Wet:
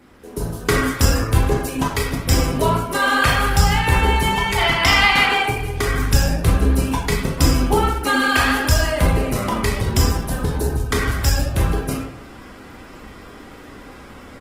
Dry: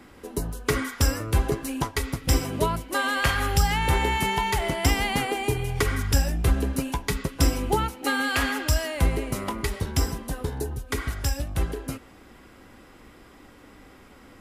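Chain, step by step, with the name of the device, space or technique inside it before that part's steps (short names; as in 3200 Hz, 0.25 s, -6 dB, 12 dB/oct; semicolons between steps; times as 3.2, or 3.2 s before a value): 4.58–5.42 band shelf 2100 Hz +12 dB 2.9 oct; speakerphone in a meeting room (reverb RT60 0.70 s, pre-delay 21 ms, DRR -0.5 dB; speakerphone echo 90 ms, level -12 dB; AGC gain up to 9 dB; gain -1.5 dB; Opus 16 kbps 48000 Hz)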